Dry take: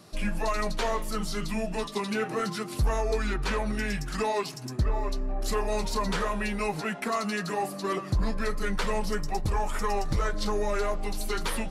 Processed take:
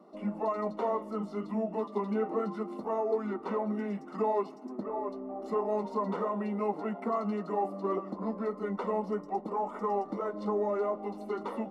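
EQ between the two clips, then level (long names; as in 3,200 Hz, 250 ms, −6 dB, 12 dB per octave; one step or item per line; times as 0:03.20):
Savitzky-Golay smoothing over 65 samples
elliptic high-pass filter 200 Hz, stop band 40 dB
0.0 dB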